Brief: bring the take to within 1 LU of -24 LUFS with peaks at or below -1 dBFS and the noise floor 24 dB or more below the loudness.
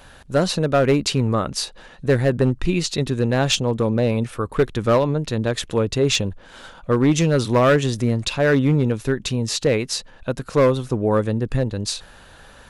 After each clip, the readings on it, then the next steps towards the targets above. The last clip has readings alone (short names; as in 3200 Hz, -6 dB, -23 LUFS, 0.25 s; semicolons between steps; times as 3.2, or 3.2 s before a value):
clipped 1.9%; flat tops at -10.0 dBFS; loudness -20.5 LUFS; peak -10.0 dBFS; loudness target -24.0 LUFS
-> clip repair -10 dBFS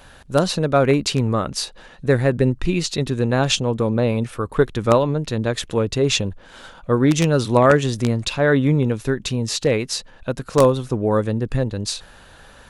clipped 0.0%; loudness -20.0 LUFS; peak -1.0 dBFS; loudness target -24.0 LUFS
-> gain -4 dB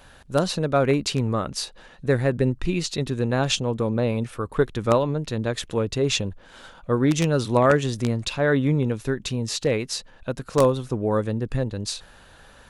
loudness -24.0 LUFS; peak -5.0 dBFS; noise floor -50 dBFS